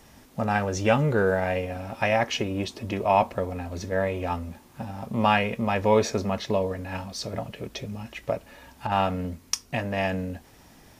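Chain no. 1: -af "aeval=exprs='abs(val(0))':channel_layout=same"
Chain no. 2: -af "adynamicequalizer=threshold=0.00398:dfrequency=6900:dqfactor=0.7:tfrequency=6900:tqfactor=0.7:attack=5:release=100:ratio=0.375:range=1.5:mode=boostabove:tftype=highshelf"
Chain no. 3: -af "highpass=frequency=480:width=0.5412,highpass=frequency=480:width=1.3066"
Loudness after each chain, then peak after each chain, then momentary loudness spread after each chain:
−30.5, −27.0, −28.5 LKFS; −5.5, −5.0, −6.0 dBFS; 14, 14, 16 LU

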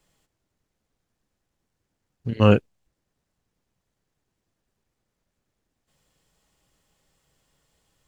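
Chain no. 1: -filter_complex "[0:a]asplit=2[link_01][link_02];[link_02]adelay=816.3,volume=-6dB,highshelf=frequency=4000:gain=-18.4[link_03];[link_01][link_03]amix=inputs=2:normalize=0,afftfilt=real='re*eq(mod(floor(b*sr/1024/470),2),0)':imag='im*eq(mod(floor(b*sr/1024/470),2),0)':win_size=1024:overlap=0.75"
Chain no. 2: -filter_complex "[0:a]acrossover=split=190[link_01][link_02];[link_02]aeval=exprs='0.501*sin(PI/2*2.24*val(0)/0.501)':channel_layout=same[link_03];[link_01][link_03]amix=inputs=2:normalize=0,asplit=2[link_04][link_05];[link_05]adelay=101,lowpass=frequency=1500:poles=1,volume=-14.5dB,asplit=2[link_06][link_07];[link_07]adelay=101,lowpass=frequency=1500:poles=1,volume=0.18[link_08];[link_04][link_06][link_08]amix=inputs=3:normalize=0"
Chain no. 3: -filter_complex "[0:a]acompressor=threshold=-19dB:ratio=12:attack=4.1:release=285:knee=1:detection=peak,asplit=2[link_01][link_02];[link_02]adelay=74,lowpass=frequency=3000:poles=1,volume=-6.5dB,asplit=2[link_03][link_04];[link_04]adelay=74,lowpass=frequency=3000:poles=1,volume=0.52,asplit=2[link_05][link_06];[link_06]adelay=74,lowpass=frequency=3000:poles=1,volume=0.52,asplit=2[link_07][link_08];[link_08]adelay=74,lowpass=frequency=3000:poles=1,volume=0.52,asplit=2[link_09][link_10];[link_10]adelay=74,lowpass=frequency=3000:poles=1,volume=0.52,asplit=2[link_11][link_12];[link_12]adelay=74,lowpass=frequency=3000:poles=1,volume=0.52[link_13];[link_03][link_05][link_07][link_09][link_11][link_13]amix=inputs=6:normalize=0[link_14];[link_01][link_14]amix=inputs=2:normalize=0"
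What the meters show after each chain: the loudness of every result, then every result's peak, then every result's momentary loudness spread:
−23.5, −16.5, −30.5 LKFS; −4.0, −2.0, −12.0 dBFS; 17, 18, 15 LU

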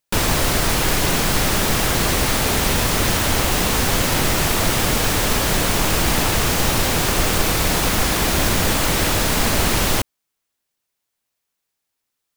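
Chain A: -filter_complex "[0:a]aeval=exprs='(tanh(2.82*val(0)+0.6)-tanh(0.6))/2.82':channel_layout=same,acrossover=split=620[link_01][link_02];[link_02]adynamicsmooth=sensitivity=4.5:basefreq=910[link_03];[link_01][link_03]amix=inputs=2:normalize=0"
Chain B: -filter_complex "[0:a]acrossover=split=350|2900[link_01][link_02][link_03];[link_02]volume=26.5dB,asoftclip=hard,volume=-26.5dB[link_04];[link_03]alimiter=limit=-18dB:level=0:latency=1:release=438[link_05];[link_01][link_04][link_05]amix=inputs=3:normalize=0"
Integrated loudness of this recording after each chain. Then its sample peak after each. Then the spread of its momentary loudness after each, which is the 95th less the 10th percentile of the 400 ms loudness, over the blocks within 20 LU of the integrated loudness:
−23.0, −21.0 LKFS; −6.5, −6.5 dBFS; 1, 1 LU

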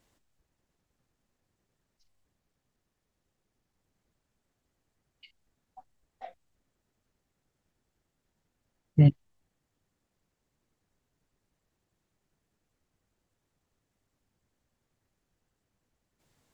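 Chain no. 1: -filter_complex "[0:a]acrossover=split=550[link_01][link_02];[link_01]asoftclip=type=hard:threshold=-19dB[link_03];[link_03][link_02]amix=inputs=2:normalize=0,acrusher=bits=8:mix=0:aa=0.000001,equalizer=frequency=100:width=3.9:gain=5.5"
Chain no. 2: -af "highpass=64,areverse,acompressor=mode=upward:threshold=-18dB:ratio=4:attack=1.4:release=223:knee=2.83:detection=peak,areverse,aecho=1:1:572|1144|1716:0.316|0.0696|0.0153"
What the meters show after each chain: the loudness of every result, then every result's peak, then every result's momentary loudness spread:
−27.5, −35.0 LKFS; −16.0, −9.5 dBFS; 5, 5 LU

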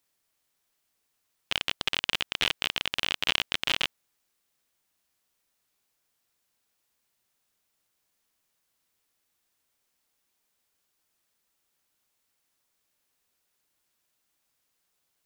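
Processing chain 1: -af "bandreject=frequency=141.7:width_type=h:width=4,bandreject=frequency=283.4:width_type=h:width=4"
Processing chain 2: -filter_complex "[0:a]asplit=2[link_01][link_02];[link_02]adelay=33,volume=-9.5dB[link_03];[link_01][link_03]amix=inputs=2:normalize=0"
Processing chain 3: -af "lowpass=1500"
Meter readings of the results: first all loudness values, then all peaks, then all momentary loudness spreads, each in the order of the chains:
−28.0, −27.5, −37.5 LKFS; −3.0, −3.0, −10.0 dBFS; 4, 4, 4 LU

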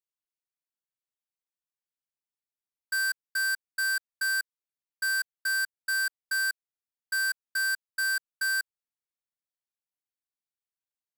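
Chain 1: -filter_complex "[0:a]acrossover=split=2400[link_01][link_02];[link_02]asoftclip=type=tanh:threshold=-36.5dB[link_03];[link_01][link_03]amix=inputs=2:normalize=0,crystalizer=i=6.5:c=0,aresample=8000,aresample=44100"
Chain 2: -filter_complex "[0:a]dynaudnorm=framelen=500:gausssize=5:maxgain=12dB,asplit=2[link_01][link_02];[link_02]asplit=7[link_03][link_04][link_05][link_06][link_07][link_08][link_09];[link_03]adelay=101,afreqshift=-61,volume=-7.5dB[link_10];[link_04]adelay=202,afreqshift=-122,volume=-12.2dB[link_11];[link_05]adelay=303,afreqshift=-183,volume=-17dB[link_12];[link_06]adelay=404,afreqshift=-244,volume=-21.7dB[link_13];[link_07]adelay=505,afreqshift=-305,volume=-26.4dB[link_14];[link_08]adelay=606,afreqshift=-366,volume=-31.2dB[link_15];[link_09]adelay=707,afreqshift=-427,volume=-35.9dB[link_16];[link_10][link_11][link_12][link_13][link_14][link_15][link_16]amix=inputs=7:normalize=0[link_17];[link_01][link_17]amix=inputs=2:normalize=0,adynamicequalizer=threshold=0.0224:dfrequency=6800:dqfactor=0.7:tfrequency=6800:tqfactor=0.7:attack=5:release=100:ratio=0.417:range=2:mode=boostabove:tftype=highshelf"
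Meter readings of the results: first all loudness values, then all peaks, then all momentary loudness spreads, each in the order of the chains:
−25.0, −15.0 LKFS; −19.5, −7.0 dBFS; 3, 7 LU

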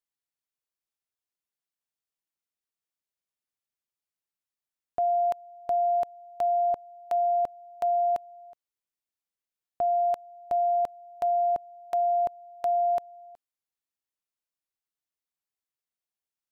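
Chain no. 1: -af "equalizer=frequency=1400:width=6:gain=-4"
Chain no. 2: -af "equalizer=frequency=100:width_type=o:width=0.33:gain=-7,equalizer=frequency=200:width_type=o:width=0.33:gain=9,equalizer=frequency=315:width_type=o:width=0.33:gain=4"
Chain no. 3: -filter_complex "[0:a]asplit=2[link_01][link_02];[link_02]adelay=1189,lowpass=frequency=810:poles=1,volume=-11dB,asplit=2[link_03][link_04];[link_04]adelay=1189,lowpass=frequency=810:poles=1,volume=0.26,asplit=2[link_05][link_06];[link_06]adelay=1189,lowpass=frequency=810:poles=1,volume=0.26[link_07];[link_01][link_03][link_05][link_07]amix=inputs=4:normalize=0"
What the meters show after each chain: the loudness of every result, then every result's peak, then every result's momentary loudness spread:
−28.0, −27.5, −27.5 LKFS; −21.0, −20.5, −19.5 dBFS; 8, 8, 16 LU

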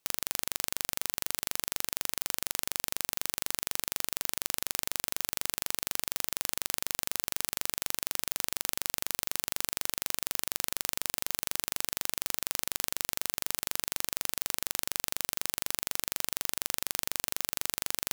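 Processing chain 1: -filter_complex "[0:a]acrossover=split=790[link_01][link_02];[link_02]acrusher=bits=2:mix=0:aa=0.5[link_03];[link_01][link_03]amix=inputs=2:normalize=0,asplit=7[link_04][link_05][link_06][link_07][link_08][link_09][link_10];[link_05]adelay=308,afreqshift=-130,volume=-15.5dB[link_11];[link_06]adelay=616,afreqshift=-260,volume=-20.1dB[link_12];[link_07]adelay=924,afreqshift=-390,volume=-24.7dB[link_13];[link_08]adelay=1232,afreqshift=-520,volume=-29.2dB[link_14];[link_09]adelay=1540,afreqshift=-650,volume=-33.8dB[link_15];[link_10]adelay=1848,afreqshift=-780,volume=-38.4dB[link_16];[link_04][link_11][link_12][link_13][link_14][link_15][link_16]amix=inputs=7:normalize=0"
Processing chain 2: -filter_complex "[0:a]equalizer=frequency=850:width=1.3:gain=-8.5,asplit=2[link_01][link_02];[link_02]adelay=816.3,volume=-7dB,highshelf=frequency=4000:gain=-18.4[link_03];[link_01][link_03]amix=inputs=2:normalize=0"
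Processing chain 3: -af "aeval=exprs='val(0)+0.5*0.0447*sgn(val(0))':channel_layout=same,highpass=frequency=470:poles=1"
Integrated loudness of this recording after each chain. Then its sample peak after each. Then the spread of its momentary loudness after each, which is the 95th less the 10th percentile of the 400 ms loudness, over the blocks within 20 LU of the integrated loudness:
−31.5, −32.0, −28.0 LKFS; −3.5, −2.5, −2.0 dBFS; 0, 0, 0 LU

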